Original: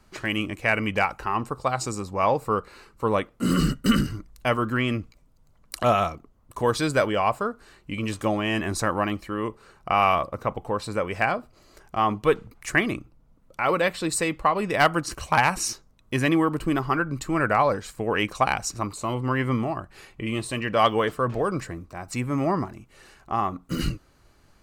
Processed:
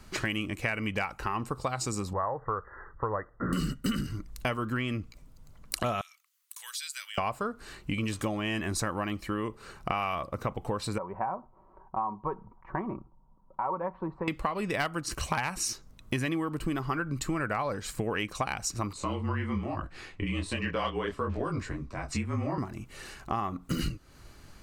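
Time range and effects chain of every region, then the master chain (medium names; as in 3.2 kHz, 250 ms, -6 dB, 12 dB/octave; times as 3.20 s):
2.13–3.53 s: brick-wall FIR low-pass 2 kHz + peaking EQ 230 Hz -14.5 dB 1.2 oct
6.01–7.18 s: Bessel high-pass 2.9 kHz, order 4 + treble shelf 8.3 kHz +7.5 dB + compression 2:1, threshold -51 dBFS
10.98–14.28 s: four-pole ladder low-pass 1 kHz, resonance 80% + comb 5.3 ms, depth 45%
18.93–22.58 s: frequency shift -32 Hz + distance through air 69 m + detune thickener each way 40 cents
whole clip: peaking EQ 680 Hz -4 dB 2.2 oct; compression 6:1, threshold -36 dBFS; trim +7.5 dB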